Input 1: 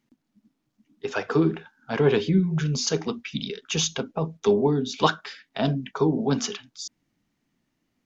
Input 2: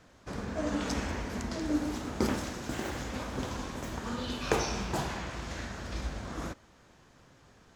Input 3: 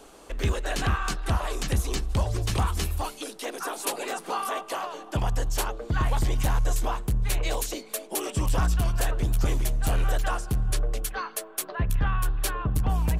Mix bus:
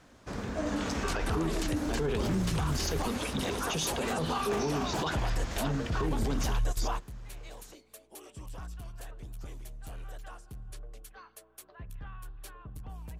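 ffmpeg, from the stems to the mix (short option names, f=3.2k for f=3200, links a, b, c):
-filter_complex "[0:a]volume=-4dB,asplit=2[a][b];[1:a]volume=0.5dB[c];[2:a]aeval=exprs='val(0)+0.00224*(sin(2*PI*60*n/s)+sin(2*PI*2*60*n/s)/2+sin(2*PI*3*60*n/s)/3+sin(2*PI*4*60*n/s)/4+sin(2*PI*5*60*n/s)/5)':c=same,volume=-2dB[d];[b]apad=whole_len=582008[e];[d][e]sidechaingate=range=-17dB:threshold=-54dB:ratio=16:detection=peak[f];[a][c][f]amix=inputs=3:normalize=0,alimiter=limit=-22.5dB:level=0:latency=1:release=23"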